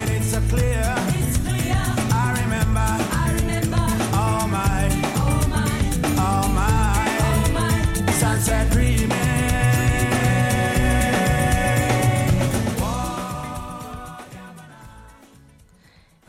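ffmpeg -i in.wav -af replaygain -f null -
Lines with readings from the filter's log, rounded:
track_gain = +5.1 dB
track_peak = 0.342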